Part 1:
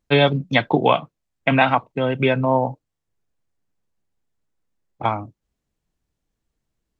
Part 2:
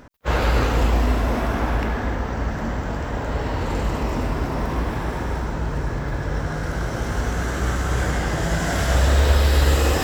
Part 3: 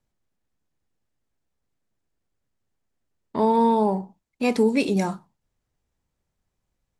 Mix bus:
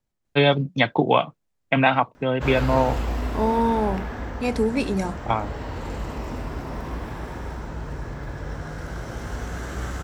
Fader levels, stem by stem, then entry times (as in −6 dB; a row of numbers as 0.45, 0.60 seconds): −2.0, −7.5, −2.5 decibels; 0.25, 2.15, 0.00 seconds